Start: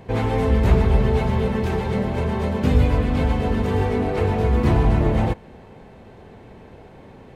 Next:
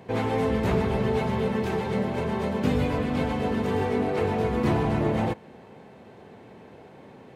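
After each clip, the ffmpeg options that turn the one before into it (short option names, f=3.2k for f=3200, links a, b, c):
-af "highpass=140,volume=-2.5dB"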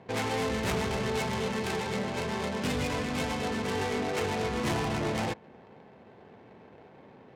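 -af "adynamicsmooth=sensitivity=6.5:basefreq=1.1k,asoftclip=type=tanh:threshold=-18dB,crystalizer=i=9.5:c=0,volume=-6dB"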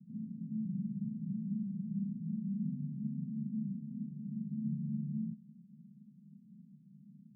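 -filter_complex "[0:a]asplit=2[a][b];[b]aeval=exprs='(mod(28.2*val(0)+1,2)-1)/28.2':c=same,volume=-5dB[c];[a][c]amix=inputs=2:normalize=0,asuperpass=centerf=180:order=8:qfactor=2.1"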